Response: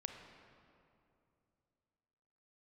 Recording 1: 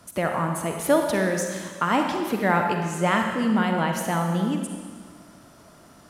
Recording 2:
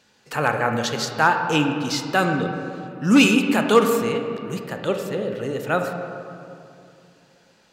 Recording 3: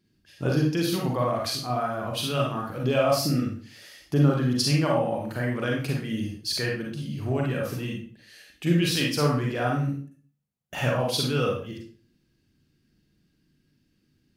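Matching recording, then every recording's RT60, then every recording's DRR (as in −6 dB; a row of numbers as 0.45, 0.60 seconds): 2; 1.7, 2.7, 0.45 seconds; 3.0, 4.5, −2.0 decibels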